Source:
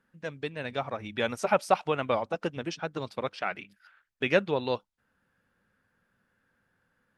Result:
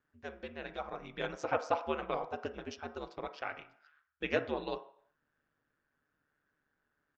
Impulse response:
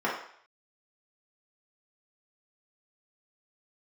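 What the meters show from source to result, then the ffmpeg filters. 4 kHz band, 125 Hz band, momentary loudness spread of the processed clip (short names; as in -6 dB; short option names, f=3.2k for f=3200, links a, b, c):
-9.0 dB, -11.5 dB, 11 LU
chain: -filter_complex "[0:a]aeval=exprs='val(0)*sin(2*PI*74*n/s)':c=same,asplit=2[a][b];[1:a]atrim=start_sample=2205[c];[b][c]afir=irnorm=-1:irlink=0,volume=-18dB[d];[a][d]amix=inputs=2:normalize=0,aresample=16000,aresample=44100,volume=-7dB"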